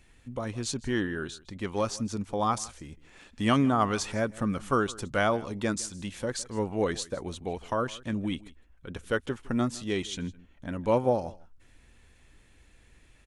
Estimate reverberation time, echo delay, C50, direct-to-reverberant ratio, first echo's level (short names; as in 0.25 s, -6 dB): none, 0.159 s, none, none, -21.0 dB